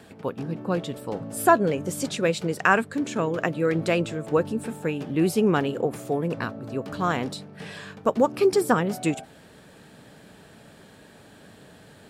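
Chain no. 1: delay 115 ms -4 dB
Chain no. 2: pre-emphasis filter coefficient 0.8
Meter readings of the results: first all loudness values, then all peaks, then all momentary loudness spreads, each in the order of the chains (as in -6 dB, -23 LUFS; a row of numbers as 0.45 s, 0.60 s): -23.5 LUFS, -36.5 LUFS; -5.0 dBFS, -15.5 dBFS; 11 LU, 13 LU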